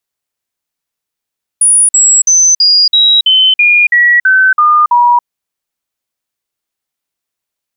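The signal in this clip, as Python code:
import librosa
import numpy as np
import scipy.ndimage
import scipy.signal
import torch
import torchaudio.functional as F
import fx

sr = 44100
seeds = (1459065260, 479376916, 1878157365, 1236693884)

y = fx.stepped_sweep(sr, from_hz=9710.0, direction='down', per_octave=3, tones=11, dwell_s=0.28, gap_s=0.05, level_db=-4.0)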